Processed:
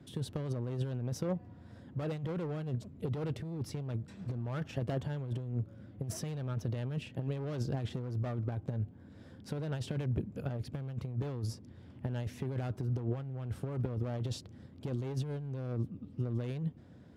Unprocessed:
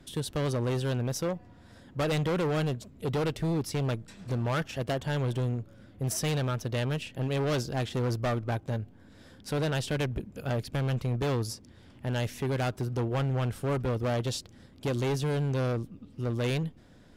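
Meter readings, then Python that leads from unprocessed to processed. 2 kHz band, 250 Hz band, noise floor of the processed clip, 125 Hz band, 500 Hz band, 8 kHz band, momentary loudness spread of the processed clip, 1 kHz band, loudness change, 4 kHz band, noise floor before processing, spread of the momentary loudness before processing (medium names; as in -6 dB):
-14.0 dB, -6.5 dB, -54 dBFS, -5.0 dB, -10.0 dB, -11.5 dB, 6 LU, -12.5 dB, -7.0 dB, -13.0 dB, -55 dBFS, 7 LU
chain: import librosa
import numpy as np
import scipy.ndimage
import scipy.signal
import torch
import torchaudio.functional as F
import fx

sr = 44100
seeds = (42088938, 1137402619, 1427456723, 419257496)

y = scipy.signal.sosfilt(scipy.signal.butter(4, 82.0, 'highpass', fs=sr, output='sos'), x)
y = fx.tilt_eq(y, sr, slope=-2.5)
y = fx.over_compress(y, sr, threshold_db=-26.0, ratio=-0.5)
y = y * 10.0 ** (-8.0 / 20.0)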